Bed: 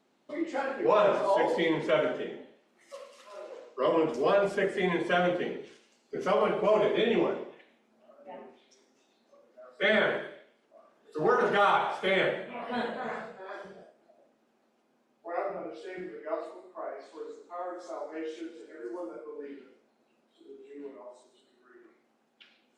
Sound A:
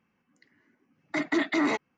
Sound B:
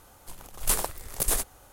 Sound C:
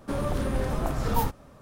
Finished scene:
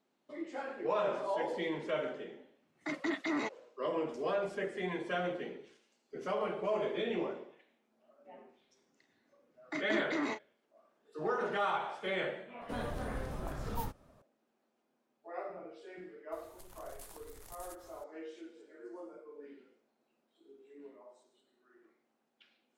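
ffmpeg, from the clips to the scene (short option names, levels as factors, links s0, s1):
-filter_complex "[1:a]asplit=2[s0][s1];[0:a]volume=0.355[s2];[s1]asplit=2[s3][s4];[s4]adelay=35,volume=0.376[s5];[s3][s5]amix=inputs=2:normalize=0[s6];[2:a]acompressor=threshold=0.01:ratio=6:attack=3.2:release=140:knee=1:detection=peak[s7];[s0]atrim=end=1.97,asetpts=PTS-STARTPTS,volume=0.355,afade=t=in:d=0.004:c=hsin,afade=t=out:st=1.966:d=0.004:c=hsin,adelay=1720[s8];[s6]atrim=end=1.97,asetpts=PTS-STARTPTS,volume=0.316,afade=t=in:d=0.004:c=hsin,afade=t=out:st=1.966:d=0.004:c=hsin,adelay=378378S[s9];[3:a]atrim=end=1.61,asetpts=PTS-STARTPTS,volume=0.237,afade=t=in:d=0.004:c=hsin,afade=t=out:st=1.606:d=0.004:c=hsin,adelay=12610[s10];[s7]atrim=end=1.72,asetpts=PTS-STARTPTS,volume=0.376,afade=t=in:d=0.004:c=hsin,afade=t=out:st=1.716:d=0.004:c=hsin,adelay=16320[s11];[s2][s8][s9][s10][s11]amix=inputs=5:normalize=0"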